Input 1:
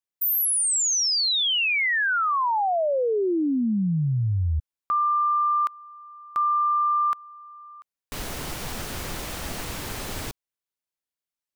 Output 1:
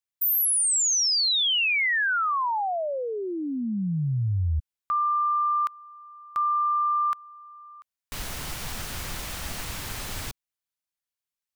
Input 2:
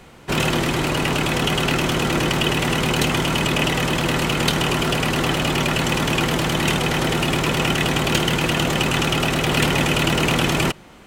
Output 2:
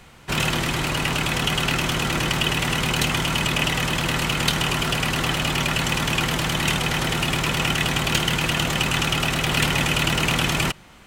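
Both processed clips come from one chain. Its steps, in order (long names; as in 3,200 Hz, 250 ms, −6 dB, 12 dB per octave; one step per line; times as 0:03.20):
parametric band 380 Hz −7.5 dB 2.1 octaves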